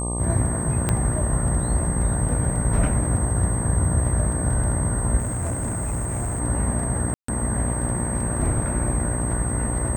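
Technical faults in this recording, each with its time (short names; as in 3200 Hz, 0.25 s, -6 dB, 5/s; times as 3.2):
buzz 60 Hz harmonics 20 -27 dBFS
crackle 13/s
tone 8300 Hz -29 dBFS
0.89 pop -8 dBFS
5.18–6.41 clipped -22.5 dBFS
7.14–7.28 gap 0.144 s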